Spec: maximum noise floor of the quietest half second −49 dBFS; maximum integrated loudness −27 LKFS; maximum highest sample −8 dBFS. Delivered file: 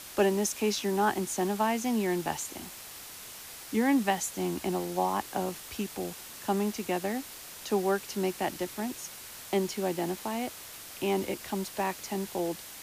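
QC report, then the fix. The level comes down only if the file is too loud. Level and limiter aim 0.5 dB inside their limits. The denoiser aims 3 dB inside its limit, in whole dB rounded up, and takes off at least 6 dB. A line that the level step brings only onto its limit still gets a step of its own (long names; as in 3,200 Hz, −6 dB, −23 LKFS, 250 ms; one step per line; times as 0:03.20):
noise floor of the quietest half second −45 dBFS: out of spec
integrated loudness −31.0 LKFS: in spec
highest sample −13.0 dBFS: in spec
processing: broadband denoise 7 dB, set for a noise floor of −45 dBFS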